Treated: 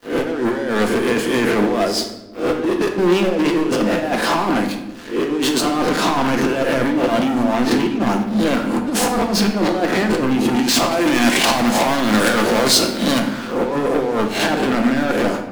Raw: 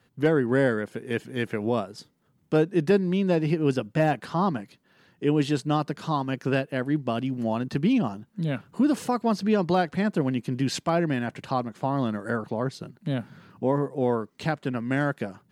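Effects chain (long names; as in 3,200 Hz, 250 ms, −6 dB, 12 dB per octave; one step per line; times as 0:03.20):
peak hold with a rise ahead of every peak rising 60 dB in 0.31 s
elliptic high-pass filter 220 Hz, stop band 40 dB
compressor whose output falls as the input rises −30 dBFS, ratio −0.5
leveller curve on the samples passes 5
0:10.91–0:13.20: high-shelf EQ 2,500 Hz +11 dB
rectangular room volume 420 cubic metres, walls mixed, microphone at 0.82 metres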